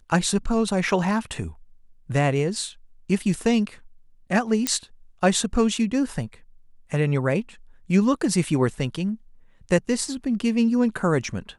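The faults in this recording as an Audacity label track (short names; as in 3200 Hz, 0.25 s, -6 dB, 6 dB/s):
4.670000	4.670000	pop -5 dBFS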